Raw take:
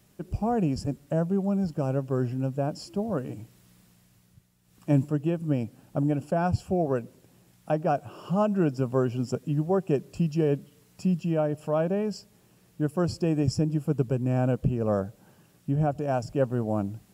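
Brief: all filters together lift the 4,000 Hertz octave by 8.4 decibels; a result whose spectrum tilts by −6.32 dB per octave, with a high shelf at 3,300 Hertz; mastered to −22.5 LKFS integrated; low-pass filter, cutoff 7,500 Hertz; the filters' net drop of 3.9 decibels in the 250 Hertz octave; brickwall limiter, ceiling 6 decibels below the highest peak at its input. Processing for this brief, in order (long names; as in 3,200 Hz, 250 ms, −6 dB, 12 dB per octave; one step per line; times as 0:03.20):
low-pass filter 7,500 Hz
parametric band 250 Hz −6 dB
high-shelf EQ 3,300 Hz +5.5 dB
parametric band 4,000 Hz +8 dB
level +8.5 dB
brickwall limiter −11 dBFS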